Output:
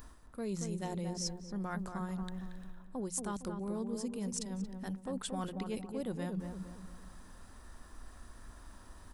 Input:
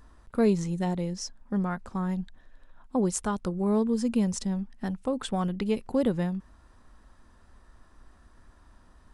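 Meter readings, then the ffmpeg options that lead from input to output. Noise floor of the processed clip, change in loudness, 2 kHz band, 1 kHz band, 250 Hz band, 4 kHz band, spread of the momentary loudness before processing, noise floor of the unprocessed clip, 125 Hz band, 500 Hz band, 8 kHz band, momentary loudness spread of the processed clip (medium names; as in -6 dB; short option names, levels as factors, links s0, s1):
-55 dBFS, -10.5 dB, -7.5 dB, -8.5 dB, -11.0 dB, -4.0 dB, 8 LU, -58 dBFS, -9.5 dB, -11.5 dB, -3.5 dB, 18 LU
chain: -filter_complex "[0:a]aemphasis=mode=production:type=50kf,bandreject=f=60:t=h:w=6,bandreject=f=120:t=h:w=6,bandreject=f=180:t=h:w=6,areverse,acompressor=threshold=0.0112:ratio=6,areverse,asplit=2[s0][s1];[s1]adelay=229,lowpass=f=1300:p=1,volume=0.562,asplit=2[s2][s3];[s3]adelay=229,lowpass=f=1300:p=1,volume=0.43,asplit=2[s4][s5];[s5]adelay=229,lowpass=f=1300:p=1,volume=0.43,asplit=2[s6][s7];[s7]adelay=229,lowpass=f=1300:p=1,volume=0.43,asplit=2[s8][s9];[s9]adelay=229,lowpass=f=1300:p=1,volume=0.43[s10];[s0][s2][s4][s6][s8][s10]amix=inputs=6:normalize=0,volume=1.26"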